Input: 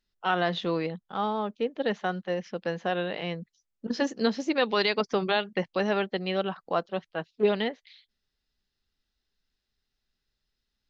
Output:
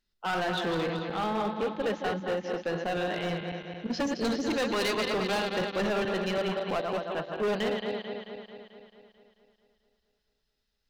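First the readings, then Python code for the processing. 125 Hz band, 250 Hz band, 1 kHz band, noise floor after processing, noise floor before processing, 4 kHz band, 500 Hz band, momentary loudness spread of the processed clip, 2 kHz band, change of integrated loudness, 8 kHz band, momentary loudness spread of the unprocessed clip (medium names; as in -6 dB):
0.0 dB, -1.0 dB, -1.5 dB, -78 dBFS, -83 dBFS, -1.0 dB, -1.0 dB, 8 LU, -1.0 dB, -1.5 dB, no reading, 8 LU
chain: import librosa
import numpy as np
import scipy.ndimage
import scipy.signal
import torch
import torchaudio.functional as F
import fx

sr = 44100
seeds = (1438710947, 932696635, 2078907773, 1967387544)

y = fx.reverse_delay_fb(x, sr, ms=110, feedback_pct=77, wet_db=-7.0)
y = np.clip(y, -10.0 ** (-25.0 / 20.0), 10.0 ** (-25.0 / 20.0))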